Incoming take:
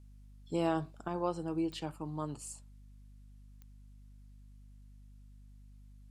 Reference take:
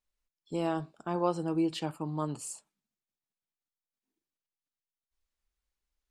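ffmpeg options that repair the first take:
-af "adeclick=t=4,bandreject=f=50:t=h:w=4,bandreject=f=100:t=h:w=4,bandreject=f=150:t=h:w=4,bandreject=f=200:t=h:w=4,bandreject=f=250:t=h:w=4,agate=range=0.0891:threshold=0.00447,asetnsamples=n=441:p=0,asendcmd='1.08 volume volume 5dB',volume=1"

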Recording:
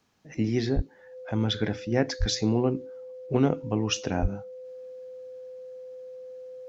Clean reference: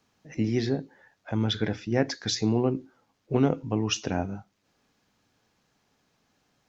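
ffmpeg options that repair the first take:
-filter_complex "[0:a]bandreject=f=510:w=30,asplit=3[s0][s1][s2];[s0]afade=t=out:st=0.75:d=0.02[s3];[s1]highpass=f=140:w=0.5412,highpass=f=140:w=1.3066,afade=t=in:st=0.75:d=0.02,afade=t=out:st=0.87:d=0.02[s4];[s2]afade=t=in:st=0.87:d=0.02[s5];[s3][s4][s5]amix=inputs=3:normalize=0,asplit=3[s6][s7][s8];[s6]afade=t=out:st=2.19:d=0.02[s9];[s7]highpass=f=140:w=0.5412,highpass=f=140:w=1.3066,afade=t=in:st=2.19:d=0.02,afade=t=out:st=2.31:d=0.02[s10];[s8]afade=t=in:st=2.31:d=0.02[s11];[s9][s10][s11]amix=inputs=3:normalize=0,asplit=3[s12][s13][s14];[s12]afade=t=out:st=4.21:d=0.02[s15];[s13]highpass=f=140:w=0.5412,highpass=f=140:w=1.3066,afade=t=in:st=4.21:d=0.02,afade=t=out:st=4.33:d=0.02[s16];[s14]afade=t=in:st=4.33:d=0.02[s17];[s15][s16][s17]amix=inputs=3:normalize=0"

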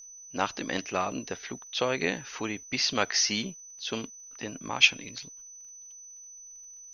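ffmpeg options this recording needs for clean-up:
-af "adeclick=t=4,bandreject=f=6000:w=30"

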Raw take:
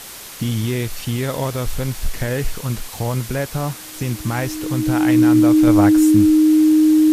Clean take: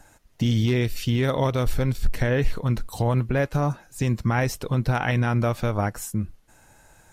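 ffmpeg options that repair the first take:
-af "adeclick=t=4,bandreject=f=310:w=30,afwtdn=0.02,asetnsamples=n=441:p=0,asendcmd='5.67 volume volume -6dB',volume=1"

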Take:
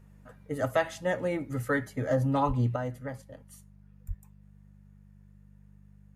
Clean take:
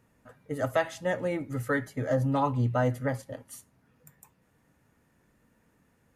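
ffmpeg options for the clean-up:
-filter_complex "[0:a]bandreject=f=49.7:t=h:w=4,bandreject=f=99.4:t=h:w=4,bandreject=f=149.1:t=h:w=4,bandreject=f=198.8:t=h:w=4,asplit=3[s0][s1][s2];[s0]afade=t=out:st=2.47:d=0.02[s3];[s1]highpass=f=140:w=0.5412,highpass=f=140:w=1.3066,afade=t=in:st=2.47:d=0.02,afade=t=out:st=2.59:d=0.02[s4];[s2]afade=t=in:st=2.59:d=0.02[s5];[s3][s4][s5]amix=inputs=3:normalize=0,asplit=3[s6][s7][s8];[s6]afade=t=out:st=4.07:d=0.02[s9];[s7]highpass=f=140:w=0.5412,highpass=f=140:w=1.3066,afade=t=in:st=4.07:d=0.02,afade=t=out:st=4.19:d=0.02[s10];[s8]afade=t=in:st=4.19:d=0.02[s11];[s9][s10][s11]amix=inputs=3:normalize=0,asetnsamples=n=441:p=0,asendcmd='2.76 volume volume 8dB',volume=1"

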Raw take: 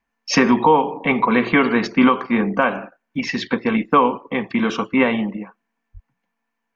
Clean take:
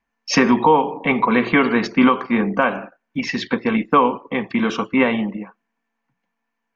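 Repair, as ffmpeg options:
-filter_complex "[0:a]asplit=3[s0][s1][s2];[s0]afade=t=out:st=5.93:d=0.02[s3];[s1]highpass=f=140:w=0.5412,highpass=f=140:w=1.3066,afade=t=in:st=5.93:d=0.02,afade=t=out:st=6.05:d=0.02[s4];[s2]afade=t=in:st=6.05:d=0.02[s5];[s3][s4][s5]amix=inputs=3:normalize=0"

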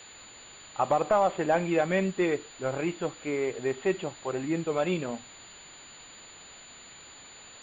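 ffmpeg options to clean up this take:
-af "adeclick=t=4,bandreject=f=7000:w=30,afwtdn=0.0056"

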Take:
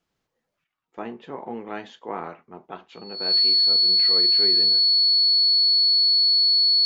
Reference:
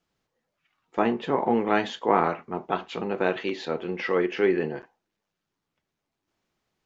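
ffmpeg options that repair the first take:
-af "bandreject=f=4400:w=30,asetnsamples=n=441:p=0,asendcmd='0.64 volume volume 10.5dB',volume=1"

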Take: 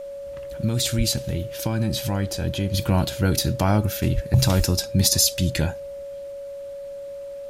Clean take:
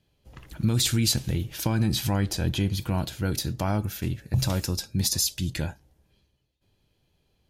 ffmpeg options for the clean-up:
-filter_complex "[0:a]bandreject=f=560:w=30,asplit=3[s0][s1][s2];[s0]afade=t=out:st=0.97:d=0.02[s3];[s1]highpass=f=140:w=0.5412,highpass=f=140:w=1.3066,afade=t=in:st=0.97:d=0.02,afade=t=out:st=1.09:d=0.02[s4];[s2]afade=t=in:st=1.09:d=0.02[s5];[s3][s4][s5]amix=inputs=3:normalize=0,asplit=3[s6][s7][s8];[s6]afade=t=out:st=4.14:d=0.02[s9];[s7]highpass=f=140:w=0.5412,highpass=f=140:w=1.3066,afade=t=in:st=4.14:d=0.02,afade=t=out:st=4.26:d=0.02[s10];[s8]afade=t=in:st=4.26:d=0.02[s11];[s9][s10][s11]amix=inputs=3:normalize=0,asplit=3[s12][s13][s14];[s12]afade=t=out:st=4.57:d=0.02[s15];[s13]highpass=f=140:w=0.5412,highpass=f=140:w=1.3066,afade=t=in:st=4.57:d=0.02,afade=t=out:st=4.69:d=0.02[s16];[s14]afade=t=in:st=4.69:d=0.02[s17];[s15][s16][s17]amix=inputs=3:normalize=0,agate=range=0.0891:threshold=0.0447,asetnsamples=n=441:p=0,asendcmd='2.74 volume volume -6.5dB',volume=1"

